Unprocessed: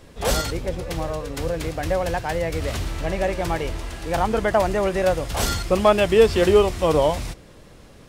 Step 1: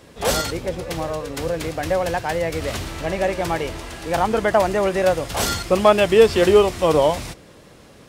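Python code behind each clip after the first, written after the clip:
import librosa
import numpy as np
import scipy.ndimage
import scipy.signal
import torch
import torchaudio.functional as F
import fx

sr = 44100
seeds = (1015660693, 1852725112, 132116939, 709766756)

y = fx.highpass(x, sr, hz=130.0, slope=6)
y = y * librosa.db_to_amplitude(2.5)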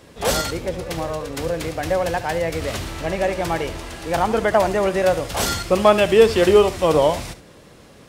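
y = x + 10.0 ** (-15.0 / 20.0) * np.pad(x, (int(72 * sr / 1000.0), 0))[:len(x)]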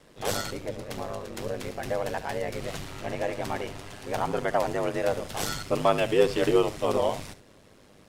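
y = x * np.sin(2.0 * np.pi * 50.0 * np.arange(len(x)) / sr)
y = y * librosa.db_to_amplitude(-6.0)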